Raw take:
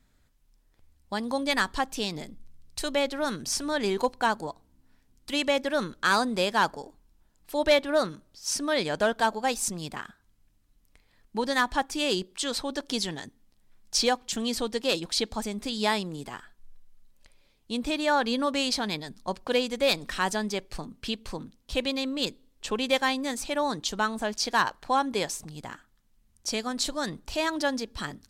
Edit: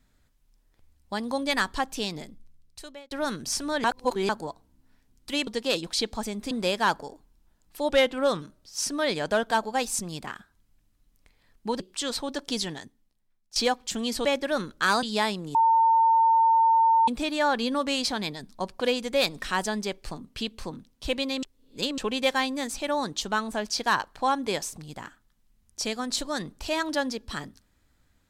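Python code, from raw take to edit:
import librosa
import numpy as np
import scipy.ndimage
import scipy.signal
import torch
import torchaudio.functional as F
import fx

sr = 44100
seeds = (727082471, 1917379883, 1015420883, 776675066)

y = fx.edit(x, sr, fx.fade_out_span(start_s=2.08, length_s=1.03),
    fx.reverse_span(start_s=3.84, length_s=0.45),
    fx.swap(start_s=5.47, length_s=0.78, other_s=14.66, other_length_s=1.04),
    fx.speed_span(start_s=7.63, length_s=0.48, speed=0.91),
    fx.cut(start_s=11.49, length_s=0.72),
    fx.fade_out_to(start_s=13.12, length_s=0.85, curve='qua', floor_db=-18.0),
    fx.bleep(start_s=16.22, length_s=1.53, hz=905.0, db=-16.5),
    fx.reverse_span(start_s=22.1, length_s=0.55), tone=tone)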